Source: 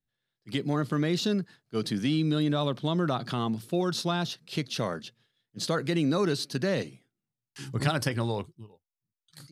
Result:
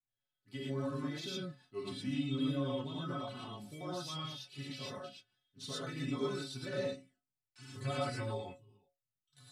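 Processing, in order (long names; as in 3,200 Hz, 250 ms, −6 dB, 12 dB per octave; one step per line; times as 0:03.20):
pitch shifter swept by a sawtooth −2.5 semitones, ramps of 476 ms
stiff-string resonator 130 Hz, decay 0.26 s, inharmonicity 0.008
reverb whose tail is shaped and stops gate 140 ms rising, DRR −5 dB
level −4.5 dB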